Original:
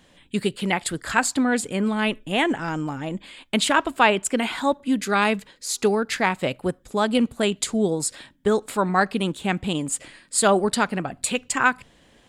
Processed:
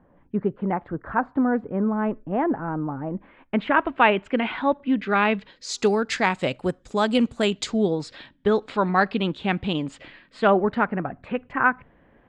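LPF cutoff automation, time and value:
LPF 24 dB/oct
3.06 s 1300 Hz
4.04 s 2900 Hz
5.22 s 2900 Hz
5.82 s 7400 Hz
7.42 s 7400 Hz
7.97 s 4300 Hz
9.85 s 4300 Hz
10.95 s 1900 Hz

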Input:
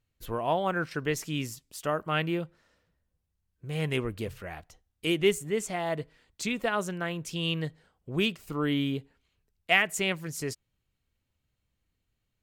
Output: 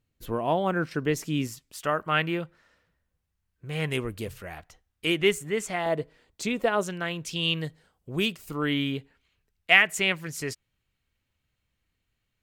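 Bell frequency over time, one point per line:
bell +6 dB 1.9 oct
250 Hz
from 1.47 s 1700 Hz
from 3.91 s 11000 Hz
from 4.58 s 1700 Hz
from 5.86 s 480 Hz
from 6.83 s 3500 Hz
from 7.59 s 14000 Hz
from 8.62 s 2100 Hz

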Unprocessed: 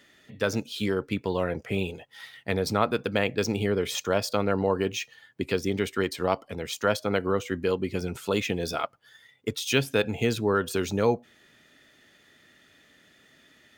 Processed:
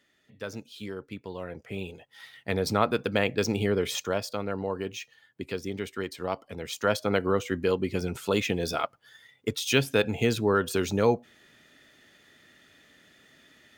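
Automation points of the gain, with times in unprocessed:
1.38 s -10.5 dB
2.68 s 0 dB
3.9 s 0 dB
4.34 s -6.5 dB
6.19 s -6.5 dB
7.04 s +0.5 dB

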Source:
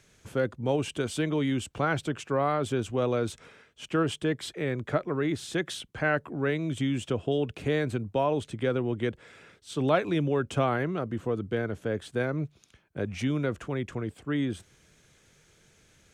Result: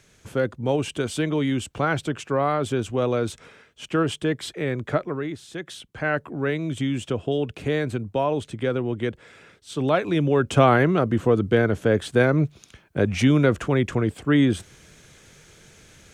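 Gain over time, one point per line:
5.02 s +4 dB
5.44 s -6 dB
6.19 s +3 dB
9.98 s +3 dB
10.7 s +10.5 dB

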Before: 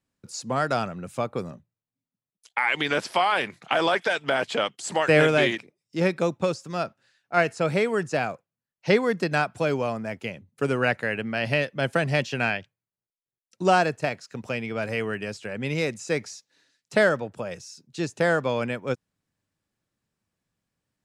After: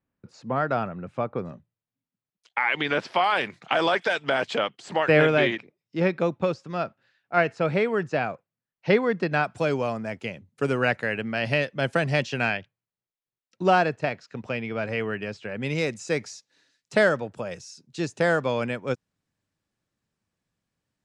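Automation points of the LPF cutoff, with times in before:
2100 Hz
from 1.45 s 3700 Hz
from 3.24 s 6600 Hz
from 4.58 s 3400 Hz
from 9.44 s 8100 Hz
from 12.57 s 4000 Hz
from 15.62 s 8900 Hz

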